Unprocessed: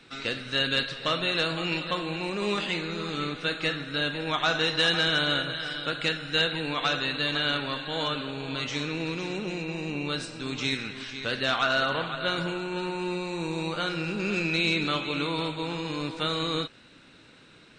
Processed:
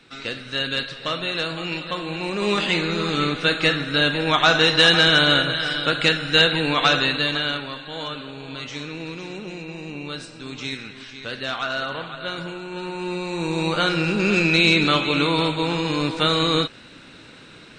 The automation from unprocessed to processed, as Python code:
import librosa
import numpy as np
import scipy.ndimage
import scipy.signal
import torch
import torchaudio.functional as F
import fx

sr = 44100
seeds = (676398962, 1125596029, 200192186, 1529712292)

y = fx.gain(x, sr, db=fx.line((1.88, 1.0), (2.8, 9.0), (7.01, 9.0), (7.74, -1.5), (12.61, -1.5), (13.76, 9.0)))